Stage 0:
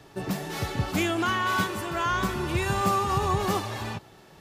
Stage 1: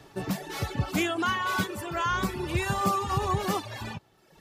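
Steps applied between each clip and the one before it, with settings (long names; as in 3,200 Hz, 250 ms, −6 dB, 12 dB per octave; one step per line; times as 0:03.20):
reverb reduction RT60 1.1 s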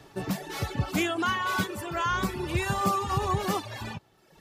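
no processing that can be heard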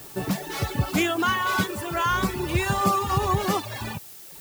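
background noise blue −48 dBFS
level +4 dB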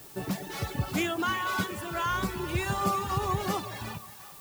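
echo with a time of its own for lows and highs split 650 Hz, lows 123 ms, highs 365 ms, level −14.5 dB
level −6 dB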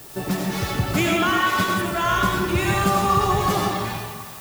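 convolution reverb RT60 0.95 s, pre-delay 50 ms, DRR −1 dB
level +6.5 dB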